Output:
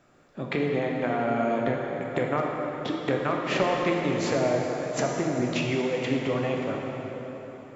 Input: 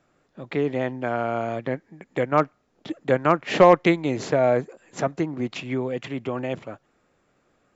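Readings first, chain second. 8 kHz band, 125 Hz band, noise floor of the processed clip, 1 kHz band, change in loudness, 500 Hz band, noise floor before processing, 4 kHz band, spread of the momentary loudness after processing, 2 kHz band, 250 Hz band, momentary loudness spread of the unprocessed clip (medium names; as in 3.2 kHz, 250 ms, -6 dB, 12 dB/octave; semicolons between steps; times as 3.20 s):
no reading, -1.5 dB, -46 dBFS, -5.0 dB, -3.5 dB, -4.0 dB, -68 dBFS, +1.0 dB, 9 LU, -1.0 dB, -1.5 dB, 16 LU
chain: compression 5:1, threshold -30 dBFS, peak gain reduction 18.5 dB; plate-style reverb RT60 4.4 s, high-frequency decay 0.7×, DRR -1.5 dB; trim +4 dB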